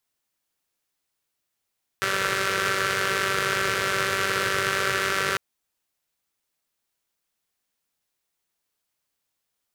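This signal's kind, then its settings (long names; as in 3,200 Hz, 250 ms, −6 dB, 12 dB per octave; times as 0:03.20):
pulse-train model of a four-cylinder engine, steady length 3.35 s, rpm 5,800, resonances 130/450/1,400 Hz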